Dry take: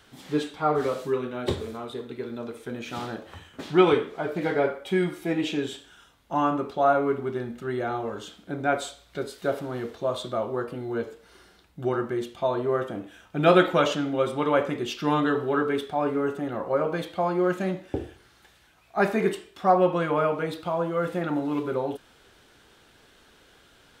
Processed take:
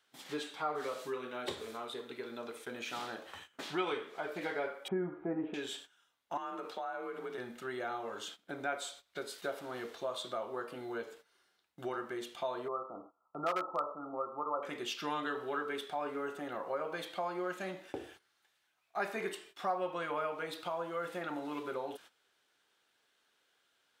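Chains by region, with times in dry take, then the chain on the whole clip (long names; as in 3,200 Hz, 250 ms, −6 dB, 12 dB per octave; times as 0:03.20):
0:04.88–0:05.54: low-pass filter 1,400 Hz 24 dB per octave + low-shelf EQ 480 Hz +11 dB
0:06.37–0:07.38: low-shelf EQ 120 Hz −8 dB + frequency shifter +40 Hz + downward compressor 10 to 1, threshold −28 dBFS
0:12.68–0:14.63: linear-phase brick-wall low-pass 1,400 Hz + hard clipping −11 dBFS + tilt shelving filter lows −7 dB, about 830 Hz
whole clip: noise gate −46 dBFS, range −16 dB; high-pass filter 890 Hz 6 dB per octave; downward compressor 2 to 1, threshold −39 dBFS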